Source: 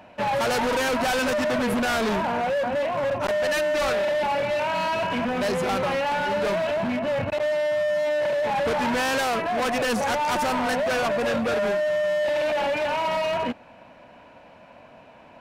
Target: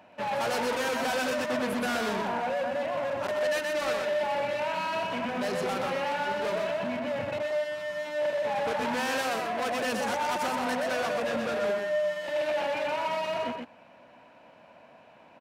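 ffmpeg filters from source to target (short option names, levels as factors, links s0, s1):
-filter_complex "[0:a]highpass=f=160:p=1,asplit=2[s0][s1];[s1]aecho=0:1:124:0.631[s2];[s0][s2]amix=inputs=2:normalize=0,volume=0.473"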